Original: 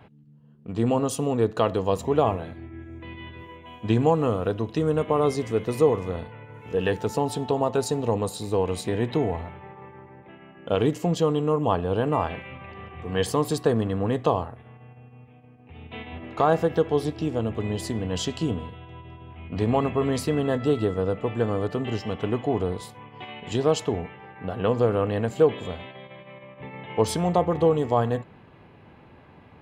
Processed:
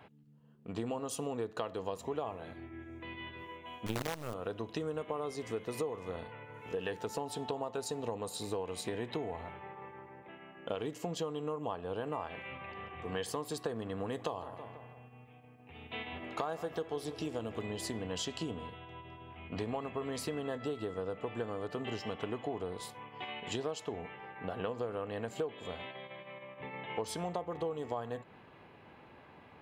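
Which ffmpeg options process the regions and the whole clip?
-filter_complex "[0:a]asettb=1/sr,asplit=3[s0][s1][s2];[s0]atrim=end=3.864[s3];[s1]atrim=start=3.86:end=4.34,asetpts=PTS-STARTPTS,afade=t=in:d=0.004:c=qsin,afade=t=out:st=0.476:d=0.004:c=qsin,equalizer=f=130:w=2.3:g=12.5,acrusher=bits=3:dc=4:mix=0:aa=0.000001[s4];[s2]atrim=start=4.336[s5];[s3][s4]acrossfade=d=0.004:c1=hsin:c2=qsin[s6];[s6][s5]acrossfade=d=0.004:c1=qsin:c2=hsin,asettb=1/sr,asplit=3[s7][s8][s9];[s7]atrim=end=13.984[s10];[s8]atrim=start=13.98:end=17.66,asetpts=PTS-STARTPTS,afade=t=in:d=0.004:c=qsin,afade=t=out:st=3.676:d=0.004:c=qsin,highshelf=f=5000:g=7.5,asplit=2[s11][s12];[s12]adelay=162,lowpass=f=4300:p=1,volume=0.15,asplit=2[s13][s14];[s14]adelay=162,lowpass=f=4300:p=1,volume=0.49,asplit=2[s15][s16];[s16]adelay=162,lowpass=f=4300:p=1,volume=0.49,asplit=2[s17][s18];[s18]adelay=162,lowpass=f=4300:p=1,volume=0.49[s19];[s11][s13][s15][s17][s19]amix=inputs=5:normalize=0,atrim=end_sample=162288[s20];[s9]atrim=start=17.656[s21];[s10][s20]acrossfade=d=0.004:c1=hsin:c2=qsin[s22];[s22][s21]acrossfade=d=0.004:c1=qsin:c2=hsin,lowshelf=f=250:g=-10.5,acompressor=threshold=0.0251:ratio=6,volume=0.794"

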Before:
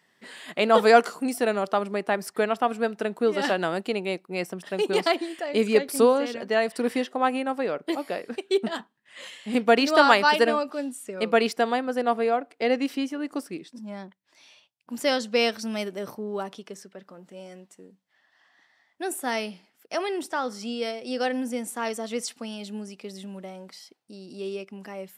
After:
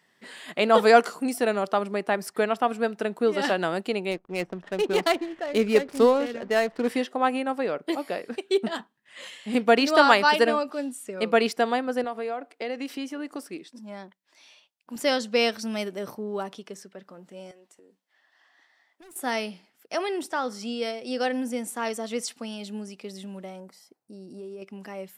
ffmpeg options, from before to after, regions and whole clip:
-filter_complex "[0:a]asettb=1/sr,asplit=3[s0][s1][s2];[s0]atrim=end=4.114[s3];[s1]atrim=start=4.11:end=6.88,asetpts=PTS-STARTPTS,afade=t=in:d=0.004:c=qsin,afade=t=out:st=2.766:d=0.004:c=qsin,acrusher=bits=9:dc=4:mix=0:aa=0.000001,adynamicsmooth=sensitivity=7:basefreq=970[s4];[s2]atrim=start=6.876[s5];[s3][s4]acrossfade=d=0.004:c1=hsin:c2=qsin[s6];[s6][s5]acrossfade=d=0.004:c1=qsin:c2=hsin,asettb=1/sr,asplit=3[s7][s8][s9];[s7]atrim=end=12.044[s10];[s8]atrim=start=12.04:end=14.96,asetpts=PTS-STARTPTS,afade=t=in:d=0.004:c=qsin,afade=t=out:st=2.916:d=0.004:c=qsin,equalizer=f=100:t=o:w=1.3:g=-14.5,acompressor=threshold=0.0355:ratio=3:attack=3.2:release=140:knee=1:detection=peak[s11];[s9]atrim=start=14.956[s12];[s10][s11]acrossfade=d=0.004:c1=hsin:c2=qsin[s13];[s13][s12]acrossfade=d=0.004:c1=qsin:c2=hsin,asettb=1/sr,asplit=3[s14][s15][s16];[s14]atrim=end=17.514[s17];[s15]atrim=start=17.51:end=19.16,asetpts=PTS-STARTPTS,afade=t=in:d=0.004:c=qsin,afade=t=out:st=1.646:d=0.004:c=qsin,highpass=f=270:w=0.5412,highpass=f=270:w=1.3066,asoftclip=type=hard:threshold=0.015,acompressor=threshold=0.00282:ratio=5:attack=3.2:release=140:knee=1:detection=peak[s18];[s16]atrim=start=19.156[s19];[s17][s18]acrossfade=d=0.004:c1=hsin:c2=qsin[s20];[s20][s19]acrossfade=d=0.004:c1=qsin:c2=hsin,asettb=1/sr,asplit=3[s21][s22][s23];[s21]atrim=end=23.604[s24];[s22]atrim=start=23.6:end=24.62,asetpts=PTS-STARTPTS,afade=t=in:d=0.004:c=qsin,afade=t=out:st=1.016:d=0.004:c=qsin,equalizer=f=3300:t=o:w=1.8:g=-14,acompressor=threshold=0.0158:ratio=5:attack=3.2:release=140:knee=1:detection=peak[s25];[s23]atrim=start=24.616[s26];[s24][s25]acrossfade=d=0.004:c1=hsin:c2=qsin[s27];[s27][s26]acrossfade=d=0.004:c1=qsin:c2=hsin"

